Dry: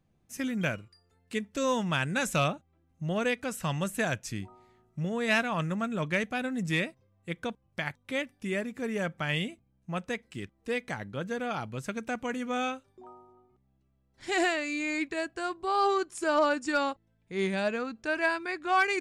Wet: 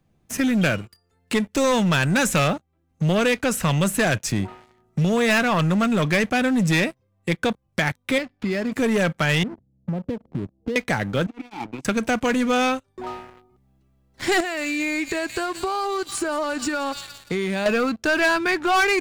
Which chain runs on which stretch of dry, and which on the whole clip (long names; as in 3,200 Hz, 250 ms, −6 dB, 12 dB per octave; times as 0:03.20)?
0:08.18–0:08.72: downward compressor 3 to 1, threshold −38 dBFS + sample-rate reduction 7,000 Hz + high-frequency loss of the air 180 metres
0:09.43–0:10.76: parametric band 130 Hz +7 dB 2.9 octaves + downward compressor 5 to 1, threshold −41 dBFS + inverse Chebyshev low-pass filter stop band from 3,900 Hz, stop band 80 dB
0:11.26–0:11.85: compressor whose output falls as the input rises −36 dBFS, ratio −0.5 + formant filter u
0:14.40–0:17.66: delay with a high-pass on its return 172 ms, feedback 47%, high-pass 4,400 Hz, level −5.5 dB + downward compressor 12 to 1, threshold −37 dBFS
whole clip: automatic gain control gain up to 3 dB; leveller curve on the samples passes 3; multiband upward and downward compressor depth 40%